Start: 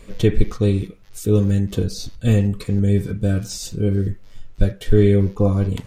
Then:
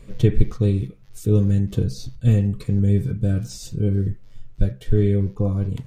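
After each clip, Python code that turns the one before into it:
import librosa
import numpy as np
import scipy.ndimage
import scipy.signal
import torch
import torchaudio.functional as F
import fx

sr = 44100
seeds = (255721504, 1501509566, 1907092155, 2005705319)

y = fx.low_shelf(x, sr, hz=360.0, db=6.0)
y = fx.rider(y, sr, range_db=10, speed_s=2.0)
y = fx.peak_eq(y, sr, hz=130.0, db=12.0, octaves=0.22)
y = y * librosa.db_to_amplitude(-8.5)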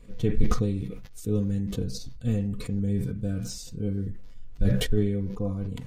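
y = x + 0.41 * np.pad(x, (int(4.1 * sr / 1000.0), 0))[:len(x)]
y = fx.sustainer(y, sr, db_per_s=44.0)
y = y * librosa.db_to_amplitude(-8.0)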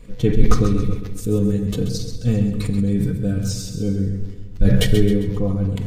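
y = fx.echo_feedback(x, sr, ms=133, feedback_pct=43, wet_db=-9.0)
y = fx.room_shoebox(y, sr, seeds[0], volume_m3=1000.0, walls='mixed', distance_m=0.53)
y = y * librosa.db_to_amplitude(7.5)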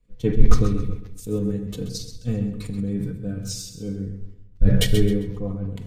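y = fx.band_widen(x, sr, depth_pct=70)
y = y * librosa.db_to_amplitude(-5.5)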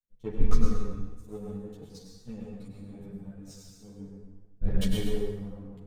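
y = fx.power_curve(x, sr, exponent=1.4)
y = fx.rev_plate(y, sr, seeds[1], rt60_s=1.2, hf_ratio=0.7, predelay_ms=85, drr_db=0.0)
y = fx.ensemble(y, sr)
y = y * librosa.db_to_amplitude(-7.0)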